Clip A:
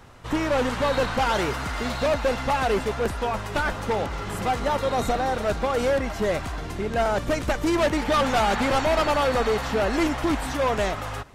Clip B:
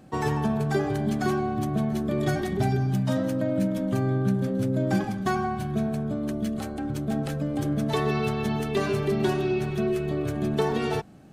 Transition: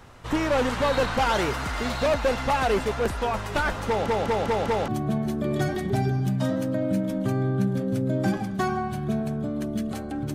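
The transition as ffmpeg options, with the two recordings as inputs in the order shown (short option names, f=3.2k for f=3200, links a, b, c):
-filter_complex "[0:a]apad=whole_dur=10.34,atrim=end=10.34,asplit=5[a][b][c][d][e];[a]atrim=end=4.082[f];[b]atrim=start=3.878:end=4.082[g];[c]atrim=start=3.878:end=4.082[h];[d]atrim=start=3.878:end=4.082[i];[e]atrim=start=3.878:end=4.082[j];[1:a]atrim=start=1.548:end=7.01[k];[f][g]acrossfade=d=0.004:c1=hsin:c2=hsin[l];[l][h]acrossfade=d=0.004:c1=hsin:c2=hsin[m];[m][i]acrossfade=d=0.004:c1=hsin:c2=hsin[n];[n][j]acrossfade=d=0.004:c1=hsin:c2=hsin[o];[o][k]acrossfade=d=0.004:c1=hsin:c2=hsin"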